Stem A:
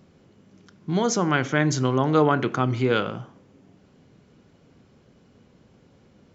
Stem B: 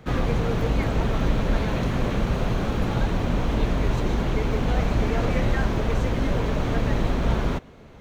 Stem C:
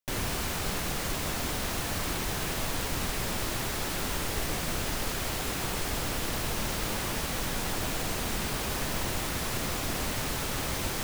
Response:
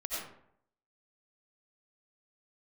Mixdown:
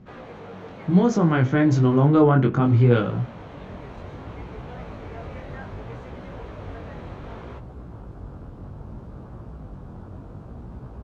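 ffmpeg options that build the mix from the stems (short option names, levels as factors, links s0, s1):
-filter_complex "[0:a]volume=1.19,asplit=2[s0][s1];[1:a]highpass=570,volume=0.422,asplit=3[s2][s3][s4];[s2]atrim=end=2.07,asetpts=PTS-STARTPTS,afade=t=out:st=2.066:d=0.004:c=hsin[s5];[s3]atrim=start=2.07:end=2.61,asetpts=PTS-STARTPTS,volume=0[s6];[s4]atrim=start=2.61,asetpts=PTS-STARTPTS,afade=t=in:d=0.004:c=hsin[s7];[s5][s6][s7]concat=n=3:v=0:a=1[s8];[2:a]afwtdn=0.0224,highpass=73,adelay=2300,volume=0.355[s9];[s1]apad=whole_len=587979[s10];[s9][s10]sidechaincompress=threshold=0.0562:ratio=8:attack=16:release=1060[s11];[s0][s8][s11]amix=inputs=3:normalize=0,flanger=delay=16:depth=6.7:speed=0.65,aemphasis=mode=reproduction:type=riaa"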